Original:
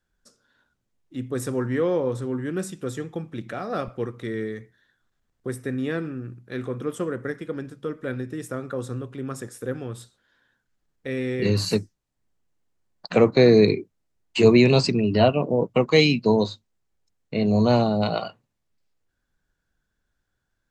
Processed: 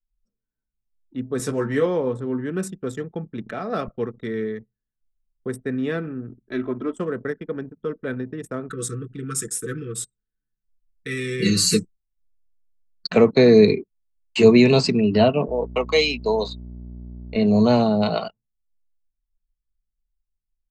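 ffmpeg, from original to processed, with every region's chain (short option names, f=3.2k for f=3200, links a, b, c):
-filter_complex "[0:a]asettb=1/sr,asplit=3[a][b][c];[a]atrim=end=1.384[d];[b]atrim=start=1.38:end=1.86,asetpts=PTS-STARTPTS,afade=t=in:d=0.004:c=qsin,afade=t=out:st=0.476:d=0.004:c=qsin,acrossover=split=7800[e][f];[f]acompressor=threshold=-51dB:ratio=4:attack=1:release=60[g];[e][g]amix=inputs=2:normalize=0,highshelf=f=4.3k:g=7,asplit=2[h][i];[i]adelay=14,volume=-4dB[j];[h][j]amix=inputs=2:normalize=0,atrim=end_sample=21168[k];[c]atrim=start=1.856[l];[d][k]acrossfade=d=0.004:c1=hsin:c2=qsin[m];[m][l]acrossfade=d=0.004:c1=qsin:c2=hsin,asettb=1/sr,asplit=3[n][o][p];[n]atrim=end=6.294[q];[o]atrim=start=6.29:end=7,asetpts=PTS-STARTPTS,afade=t=in:d=0.004:c=qsin,afade=t=out:st=0.706:d=0.004:c=qsin,lowpass=10k,highshelf=f=2.8k:g=-2,aecho=1:1:3.1:0.86,atrim=end_sample=31311[r];[p]atrim=start=6.996[s];[q][r]acrossfade=d=0.004:c1=hsin:c2=qsin[t];[t][s]acrossfade=d=0.004:c1=qsin:c2=hsin,asettb=1/sr,asplit=3[u][v][w];[u]atrim=end=8.694[x];[v]atrim=start=8.69:end=13.1,asetpts=PTS-STARTPTS,afade=t=in:d=0.004:c=qsin,afade=t=out:st=4.406:d=0.004:c=qsin,asuperstop=centerf=740:order=20:qfactor=1.1,equalizer=f=8.4k:t=o:w=1.2:g=15,aecho=1:1:6.1:0.76,atrim=end_sample=194481[y];[w]atrim=start=13.096[z];[x][y]acrossfade=d=0.004:c1=hsin:c2=qsin[aa];[aa][z]acrossfade=d=0.004:c1=qsin:c2=hsin,asettb=1/sr,asplit=3[ab][ac][ad];[ab]atrim=end=15.484[ae];[ac]atrim=start=15.48:end=17.36,asetpts=PTS-STARTPTS,afade=t=in:d=0.004:c=qsin,afade=t=out:st=1.876:d=0.004:c=qsin,highpass=500,equalizer=f=1.7k:w=5.1:g=-8,aeval=exprs='val(0)+0.0158*(sin(2*PI*60*n/s)+sin(2*PI*2*60*n/s)/2+sin(2*PI*3*60*n/s)/3+sin(2*PI*4*60*n/s)/4+sin(2*PI*5*60*n/s)/5)':c=same[af];[ad]atrim=start=17.356[ag];[ae][af]acrossfade=d=0.004:c1=hsin:c2=qsin[ah];[ah][ag]acrossfade=d=0.004:c1=qsin:c2=hsin,anlmdn=1.58,aecho=1:1:4.6:0.34,acrossover=split=460[ai][aj];[aj]acompressor=threshold=-18dB:ratio=2.5[ak];[ai][ak]amix=inputs=2:normalize=0,volume=1.5dB"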